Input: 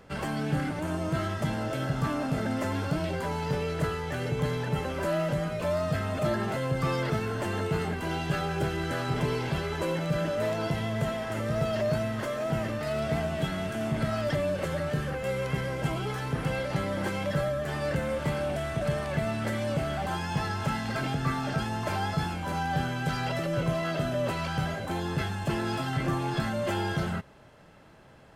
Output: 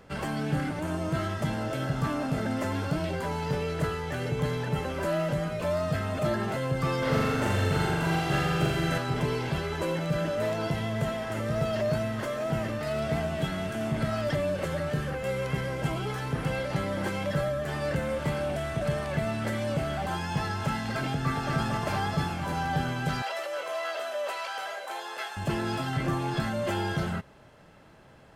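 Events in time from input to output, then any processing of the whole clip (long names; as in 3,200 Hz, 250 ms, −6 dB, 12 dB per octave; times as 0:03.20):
0:06.98–0:08.98: flutter between parallel walls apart 7.2 metres, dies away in 1.5 s
0:21.12–0:21.54: delay throw 230 ms, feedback 80%, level −4 dB
0:23.22–0:25.37: high-pass filter 540 Hz 24 dB per octave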